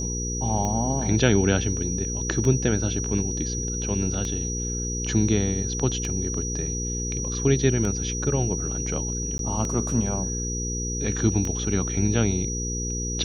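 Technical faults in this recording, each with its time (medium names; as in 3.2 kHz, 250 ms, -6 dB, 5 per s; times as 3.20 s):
hum 60 Hz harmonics 8 -30 dBFS
tick 33 1/3 rpm -16 dBFS
whine 5.8 kHz -30 dBFS
9.38–9.39 s: dropout 12 ms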